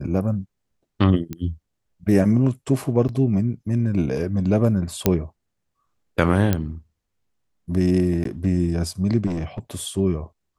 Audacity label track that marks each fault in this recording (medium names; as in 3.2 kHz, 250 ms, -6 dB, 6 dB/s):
1.330000	1.330000	pop -17 dBFS
3.080000	3.090000	dropout 9.5 ms
5.060000	5.060000	pop -3 dBFS
6.530000	6.530000	pop -7 dBFS
8.240000	8.250000	dropout 13 ms
9.260000	9.590000	clipped -21.5 dBFS